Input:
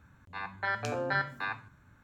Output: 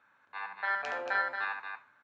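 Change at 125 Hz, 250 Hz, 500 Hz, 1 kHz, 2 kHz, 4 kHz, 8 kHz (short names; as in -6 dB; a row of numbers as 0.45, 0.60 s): under -25 dB, -14.0 dB, -4.0 dB, +1.0 dB, +1.5 dB, -2.5 dB, under -10 dB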